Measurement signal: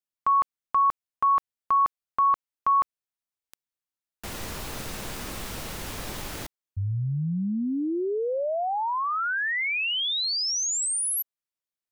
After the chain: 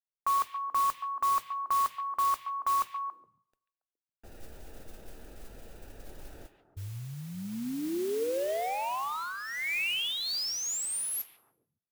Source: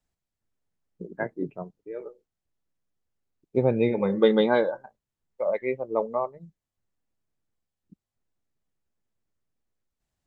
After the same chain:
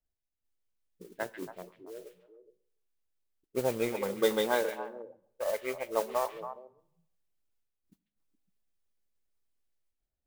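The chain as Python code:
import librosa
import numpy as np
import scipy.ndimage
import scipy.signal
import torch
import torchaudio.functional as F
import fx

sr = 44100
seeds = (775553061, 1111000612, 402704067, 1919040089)

p1 = fx.wiener(x, sr, points=41)
p2 = fx.peak_eq(p1, sr, hz=150.0, db=-13.5, octaves=2.5)
p3 = fx.rider(p2, sr, range_db=4, speed_s=2.0)
p4 = fx.mod_noise(p3, sr, seeds[0], snr_db=15)
p5 = p4 + fx.echo_stepped(p4, sr, ms=139, hz=2500.0, octaves=-1.4, feedback_pct=70, wet_db=-5, dry=0)
y = fx.rev_plate(p5, sr, seeds[1], rt60_s=0.77, hf_ratio=0.85, predelay_ms=0, drr_db=18.0)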